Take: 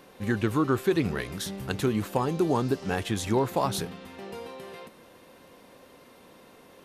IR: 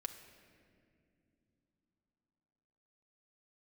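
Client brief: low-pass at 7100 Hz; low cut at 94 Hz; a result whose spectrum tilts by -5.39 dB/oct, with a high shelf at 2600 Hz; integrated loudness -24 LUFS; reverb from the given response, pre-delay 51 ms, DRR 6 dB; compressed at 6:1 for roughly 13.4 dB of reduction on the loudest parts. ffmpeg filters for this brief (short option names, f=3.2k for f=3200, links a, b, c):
-filter_complex "[0:a]highpass=94,lowpass=7.1k,highshelf=f=2.6k:g=-5.5,acompressor=threshold=-35dB:ratio=6,asplit=2[a][b];[1:a]atrim=start_sample=2205,adelay=51[c];[b][c]afir=irnorm=-1:irlink=0,volume=-3.5dB[d];[a][d]amix=inputs=2:normalize=0,volume=15dB"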